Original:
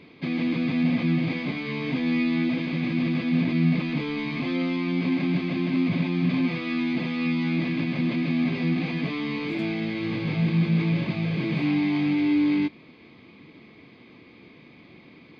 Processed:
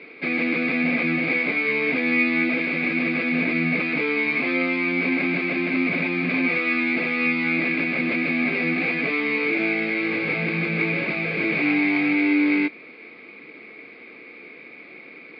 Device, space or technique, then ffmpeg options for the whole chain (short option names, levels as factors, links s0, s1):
phone earpiece: -af "highpass=370,equalizer=f=460:t=q:w=4:g=5,equalizer=f=1000:t=q:w=4:g=-8,equalizer=f=1400:t=q:w=4:g=7,equalizer=f=2300:t=q:w=4:g=9,equalizer=f=3300:t=q:w=4:g=-9,lowpass=f=4300:w=0.5412,lowpass=f=4300:w=1.3066,volume=2.11"